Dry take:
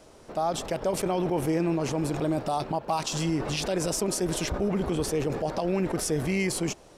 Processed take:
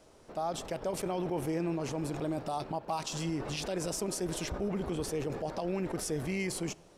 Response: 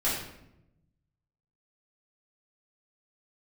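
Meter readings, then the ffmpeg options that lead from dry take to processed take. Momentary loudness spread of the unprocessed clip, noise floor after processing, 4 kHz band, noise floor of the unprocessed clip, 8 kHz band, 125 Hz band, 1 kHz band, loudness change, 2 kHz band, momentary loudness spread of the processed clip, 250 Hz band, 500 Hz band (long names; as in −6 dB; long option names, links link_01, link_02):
3 LU, −58 dBFS, −7.0 dB, −52 dBFS, −7.0 dB, −7.0 dB, −6.5 dB, −7.0 dB, −6.5 dB, 3 LU, −7.0 dB, −7.0 dB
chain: -filter_complex "[0:a]asplit=2[link_01][link_02];[1:a]atrim=start_sample=2205,asetrate=48510,aresample=44100[link_03];[link_02][link_03]afir=irnorm=-1:irlink=0,volume=-31dB[link_04];[link_01][link_04]amix=inputs=2:normalize=0,volume=-7dB"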